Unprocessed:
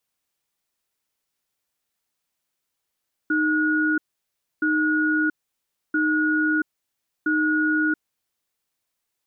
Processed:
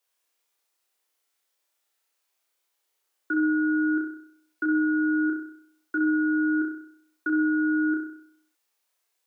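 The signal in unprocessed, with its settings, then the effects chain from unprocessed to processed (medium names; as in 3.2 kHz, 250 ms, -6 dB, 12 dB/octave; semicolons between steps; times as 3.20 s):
cadence 309 Hz, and 1.45 kHz, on 0.68 s, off 0.64 s, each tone -21 dBFS 4.89 s
dynamic bell 1.3 kHz, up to -4 dB, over -36 dBFS, Q 2.5; high-pass 340 Hz 24 dB/octave; on a send: flutter echo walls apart 5.5 m, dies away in 0.64 s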